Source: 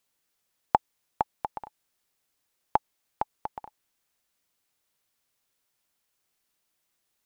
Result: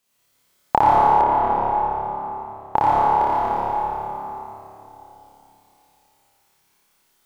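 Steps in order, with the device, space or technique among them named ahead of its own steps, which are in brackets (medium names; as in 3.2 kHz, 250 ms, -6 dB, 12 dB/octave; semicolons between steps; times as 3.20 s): tunnel (flutter echo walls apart 4.9 m, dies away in 1.3 s; reverberation RT60 3.3 s, pre-delay 59 ms, DRR -5.5 dB); 1.21–2.76 s: FFT filter 940 Hz 0 dB, 3.2 kHz -4 dB, 5.1 kHz -10 dB; trim +2.5 dB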